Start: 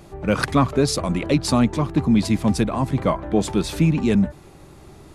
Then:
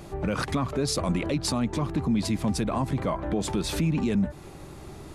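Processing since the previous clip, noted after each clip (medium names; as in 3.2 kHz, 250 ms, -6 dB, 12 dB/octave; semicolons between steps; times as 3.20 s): compression 2:1, threshold -25 dBFS, peak gain reduction 8 dB; peak limiter -19.5 dBFS, peak gain reduction 8.5 dB; trim +2 dB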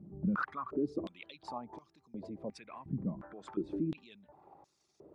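resonances exaggerated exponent 1.5; step-sequenced band-pass 2.8 Hz 200–5600 Hz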